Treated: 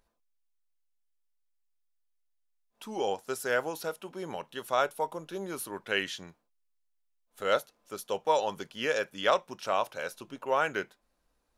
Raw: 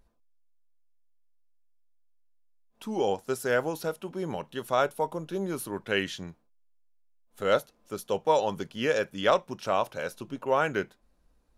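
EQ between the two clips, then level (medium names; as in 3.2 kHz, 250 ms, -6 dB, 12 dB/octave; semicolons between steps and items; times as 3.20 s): bass shelf 340 Hz -11.5 dB; 0.0 dB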